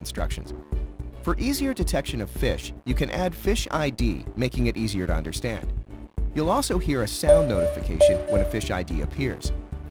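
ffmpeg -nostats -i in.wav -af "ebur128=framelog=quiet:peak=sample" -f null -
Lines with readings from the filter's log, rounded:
Integrated loudness:
  I:         -25.4 LUFS
  Threshold: -35.5 LUFS
Loudness range:
  LRA:         4.8 LU
  Threshold: -45.2 LUFS
  LRA low:   -27.5 LUFS
  LRA high:  -22.7 LUFS
Sample peak:
  Peak:       -5.1 dBFS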